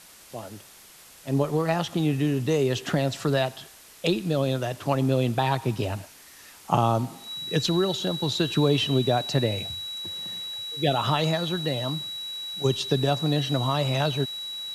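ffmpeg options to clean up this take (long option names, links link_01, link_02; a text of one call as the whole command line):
ffmpeg -i in.wav -af "bandreject=frequency=3900:width=30,afwtdn=0.004" out.wav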